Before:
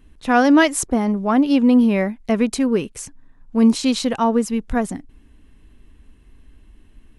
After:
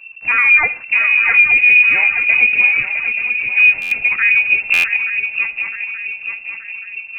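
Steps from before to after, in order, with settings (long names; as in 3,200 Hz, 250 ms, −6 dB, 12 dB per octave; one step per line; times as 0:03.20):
pitch shifter gated in a rhythm −1.5 semitones, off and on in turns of 63 ms
low-shelf EQ 370 Hz +5.5 dB
in parallel at +1.5 dB: brickwall limiter −13.5 dBFS, peak gain reduction 11.5 dB
on the sum: high-frequency loss of the air 200 metres
on a send: feedback echo with a long and a short gap by turns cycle 877 ms, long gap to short 3 to 1, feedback 47%, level −7.5 dB
on the sum: comb and all-pass reverb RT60 0.49 s, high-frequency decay 0.5×, pre-delay 10 ms, DRR 17.5 dB
voice inversion scrambler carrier 2,700 Hz
buffer that repeats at 0:03.81/0:04.73, samples 512, times 8
level −3 dB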